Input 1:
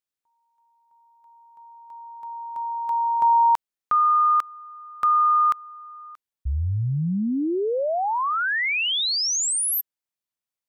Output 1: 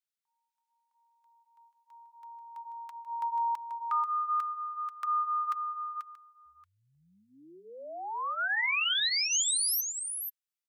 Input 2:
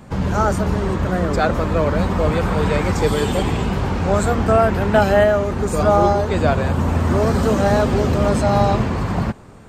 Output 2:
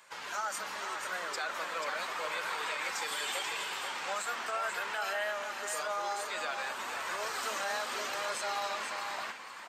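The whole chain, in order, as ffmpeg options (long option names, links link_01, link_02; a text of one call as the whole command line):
ffmpeg -i in.wav -filter_complex "[0:a]highpass=1500,alimiter=limit=-22dB:level=0:latency=1:release=74,flanger=delay=1.9:depth=1.9:regen=-48:speed=0.84:shape=sinusoidal,asplit=2[link_01][link_02];[link_02]aecho=0:1:486:0.447[link_03];[link_01][link_03]amix=inputs=2:normalize=0" out.wav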